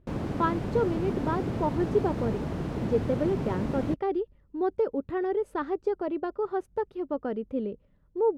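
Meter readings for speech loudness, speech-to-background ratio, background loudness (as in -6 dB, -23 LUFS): -30.5 LUFS, 2.0 dB, -32.5 LUFS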